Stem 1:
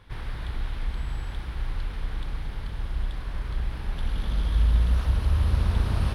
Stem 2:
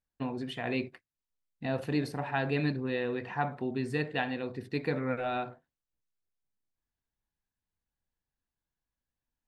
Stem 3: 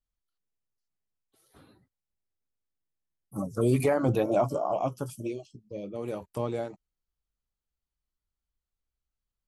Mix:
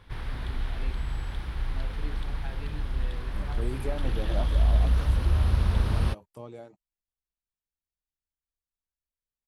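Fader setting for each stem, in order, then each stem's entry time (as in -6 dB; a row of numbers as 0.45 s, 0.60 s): -0.5 dB, -15.5 dB, -11.5 dB; 0.00 s, 0.10 s, 0.00 s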